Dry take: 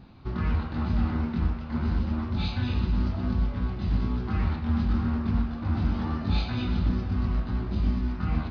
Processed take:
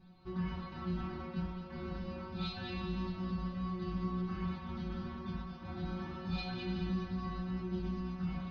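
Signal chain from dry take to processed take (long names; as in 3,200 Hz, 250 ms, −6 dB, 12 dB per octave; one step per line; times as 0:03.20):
stiff-string resonator 180 Hz, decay 0.36 s, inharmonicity 0.002
feedback echo with a high-pass in the loop 211 ms, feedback 55%, level −8.5 dB
level +4.5 dB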